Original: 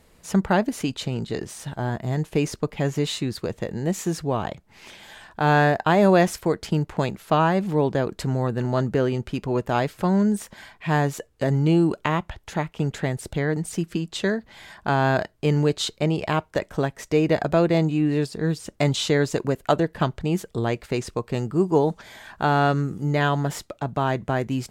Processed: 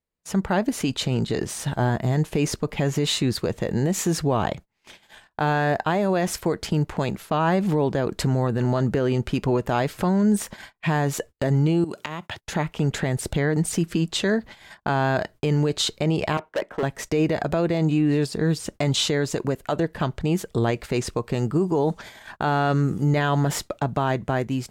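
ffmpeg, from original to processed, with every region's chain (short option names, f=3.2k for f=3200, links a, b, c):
-filter_complex "[0:a]asettb=1/sr,asplit=3[a][b][c];[a]atrim=end=11.844[d];[b]atrim=start=11.84:end=12.41,asetpts=PTS-STARTPTS,afade=t=in:d=0.004:c=qsin,afade=t=out:st=0.566:d=0.004:c=qsin,highpass=f=110:w=0.5412,highpass=f=110:w=1.3066,acompressor=threshold=-32dB:ratio=10:attack=3.2:release=140:knee=1:detection=peak,highshelf=f=2.5k:g=8[e];[c]atrim=start=12.406[f];[d][e]acrossfade=d=0.004:c1=hsin:c2=qsin[g];[g][f]acrossfade=d=0.004:c1=qsin:c2=hsin,asettb=1/sr,asplit=3[h][i][j];[h]atrim=end=16.374[k];[i]atrim=start=16.37:end=16.83,asetpts=PTS-STARTPTS,afade=t=in:d=0.004:c=qsin,afade=t=out:st=0.456:d=0.004:c=qsin,acrossover=split=220 2700:gain=0.126 1 0.141[l][m][n];[l][m][n]amix=inputs=3:normalize=0,agate=range=-9dB:threshold=-55dB:ratio=16:release=100:detection=peak,asoftclip=type=hard:threshold=-25.5dB[o];[j]atrim=start=16.826[p];[k][o]acrossfade=d=0.004:c1=hsin:c2=qsin[q];[q][p]acrossfade=d=0.004:c1=qsin:c2=hsin,agate=range=-32dB:threshold=-42dB:ratio=16:detection=peak,dynaudnorm=f=130:g=11:m=7dB,alimiter=limit=-12.5dB:level=0:latency=1:release=68"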